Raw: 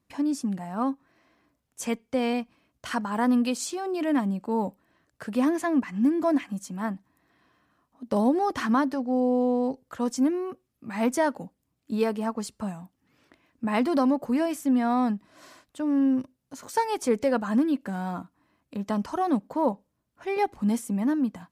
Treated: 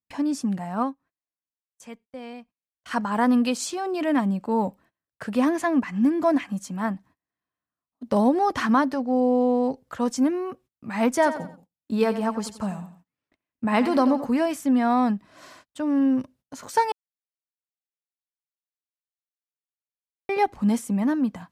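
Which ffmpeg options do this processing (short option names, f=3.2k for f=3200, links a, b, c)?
-filter_complex "[0:a]asettb=1/sr,asplit=3[a][b][c];[a]atrim=end=11.134[d];[b]atrim=start=11.13:end=14.27,asetpts=PTS-STARTPTS,afade=t=in:d=0.004:c=qsin,afade=t=out:st=3.136:d=0.004:c=qsin,aecho=1:1:89|178|267:0.251|0.0854|0.029,atrim=end_sample=138474[e];[c]atrim=start=14.266[f];[d][e]acrossfade=d=0.004:c1=hsin:c2=qsin[g];[g][f]acrossfade=d=0.004:c1=qsin:c2=hsin,asplit=5[h][i][j][k][l];[h]atrim=end=0.94,asetpts=PTS-STARTPTS,afade=t=out:st=0.81:d=0.13:silence=0.16788[m];[i]atrim=start=0.94:end=2.85,asetpts=PTS-STARTPTS,volume=-15.5dB[n];[j]atrim=start=2.85:end=16.92,asetpts=PTS-STARTPTS,afade=t=in:d=0.13:silence=0.16788,afade=t=out:st=14.066:d=0.004:c=hsin[o];[k]atrim=start=16.92:end=20.29,asetpts=PTS-STARTPTS,volume=0[p];[l]atrim=start=20.29,asetpts=PTS-STARTPTS,afade=t=in:d=0.004:c=hsin[q];[m][n][o][p][q]concat=n=5:v=0:a=1,equalizer=f=320:w=1.5:g=-3.5,agate=range=-29dB:threshold=-55dB:ratio=16:detection=peak,highshelf=f=7.3k:g=-5.5,volume=4.5dB"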